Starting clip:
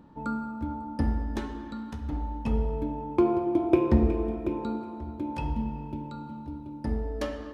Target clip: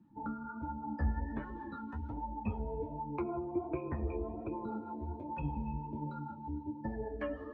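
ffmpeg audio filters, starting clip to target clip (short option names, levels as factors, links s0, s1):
-filter_complex "[0:a]acrossover=split=3000[s0][s1];[s1]acompressor=threshold=0.00126:ratio=4:attack=1:release=60[s2];[s0][s2]amix=inputs=2:normalize=0,afftdn=nr=22:nf=-43,equalizer=f=2000:t=o:w=2.3:g=9.5,acrossover=split=120|440[s3][s4][s5];[s3]acompressor=threshold=0.0355:ratio=4[s6];[s4]acompressor=threshold=0.0126:ratio=4[s7];[s5]acompressor=threshold=0.01:ratio=4[s8];[s6][s7][s8]amix=inputs=3:normalize=0,flanger=delay=8.6:depth=6.4:regen=32:speed=0.43:shape=triangular,acrossover=split=560[s9][s10];[s9]aeval=exprs='val(0)*(1-0.5/2+0.5/2*cos(2*PI*6.4*n/s))':c=same[s11];[s10]aeval=exprs='val(0)*(1-0.5/2-0.5/2*cos(2*PI*6.4*n/s))':c=same[s12];[s11][s12]amix=inputs=2:normalize=0,flanger=delay=5.4:depth=8.6:regen=24:speed=1.3:shape=sinusoidal,volume=1.88"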